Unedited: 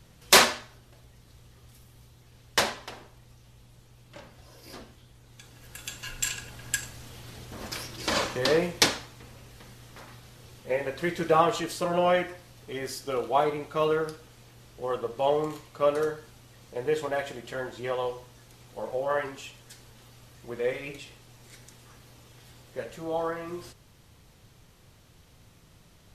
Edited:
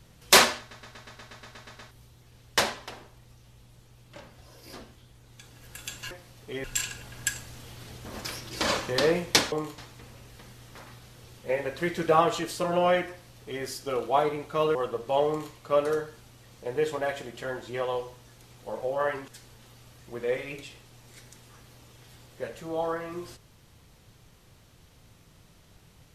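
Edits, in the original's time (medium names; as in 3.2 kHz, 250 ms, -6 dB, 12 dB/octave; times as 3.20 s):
0.59 s: stutter in place 0.12 s, 11 plays
12.31–12.84 s: copy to 6.11 s
13.96–14.85 s: delete
15.38–15.64 s: copy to 8.99 s
19.38–19.64 s: delete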